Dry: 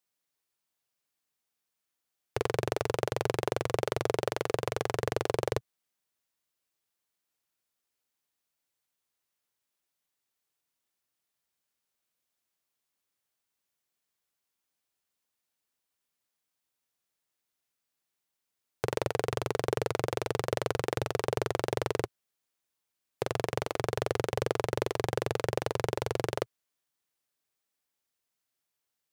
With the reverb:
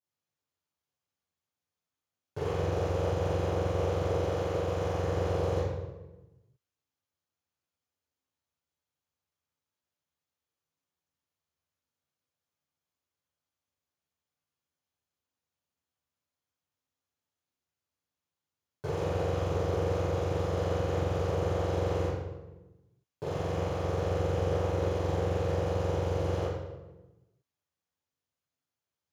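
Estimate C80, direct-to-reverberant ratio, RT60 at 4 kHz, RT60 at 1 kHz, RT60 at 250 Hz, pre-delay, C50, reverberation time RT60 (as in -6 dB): 2.0 dB, -17.5 dB, 0.80 s, 1.0 s, no reading, 3 ms, -1.5 dB, 1.1 s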